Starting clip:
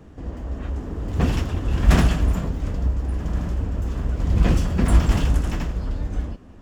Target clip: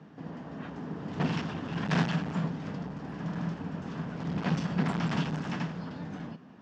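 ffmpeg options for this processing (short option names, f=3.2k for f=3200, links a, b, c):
-af "asoftclip=type=hard:threshold=-18dB,highpass=f=150:w=0.5412,highpass=f=150:w=1.3066,equalizer=f=160:t=q:w=4:g=7,equalizer=f=350:t=q:w=4:g=-5,equalizer=f=540:t=q:w=4:g=-4,equalizer=f=890:t=q:w=4:g=3,equalizer=f=1.6k:t=q:w=4:g=3,lowpass=f=5.5k:w=0.5412,lowpass=f=5.5k:w=1.3066,volume=-3.5dB"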